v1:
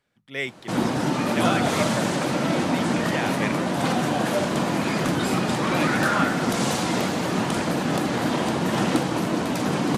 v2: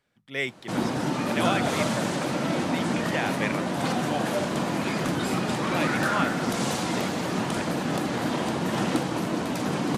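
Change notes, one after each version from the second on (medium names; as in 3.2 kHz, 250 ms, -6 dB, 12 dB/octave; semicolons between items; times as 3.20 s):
background -3.5 dB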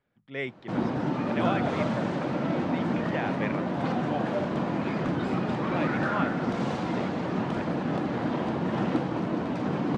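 master: add tape spacing loss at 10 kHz 29 dB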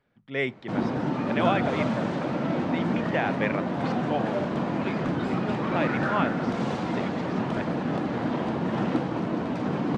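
speech +4.5 dB; reverb: on, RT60 0.45 s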